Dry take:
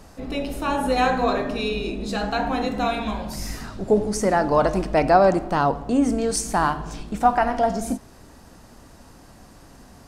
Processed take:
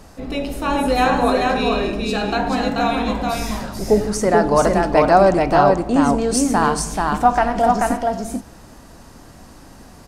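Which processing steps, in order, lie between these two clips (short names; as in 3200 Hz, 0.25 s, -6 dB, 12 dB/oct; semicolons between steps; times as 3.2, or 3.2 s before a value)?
echo 0.435 s -3 dB; gain +3 dB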